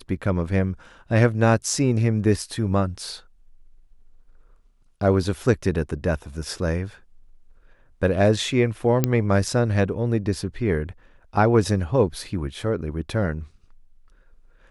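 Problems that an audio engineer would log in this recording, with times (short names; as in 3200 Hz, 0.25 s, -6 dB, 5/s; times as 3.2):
9.04 pop -5 dBFS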